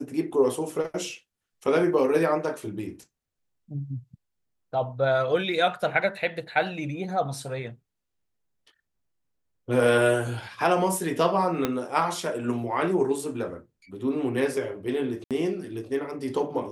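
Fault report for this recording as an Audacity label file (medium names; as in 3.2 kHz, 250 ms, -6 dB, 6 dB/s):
11.650000	11.650000	pop -10 dBFS
15.240000	15.310000	dropout 67 ms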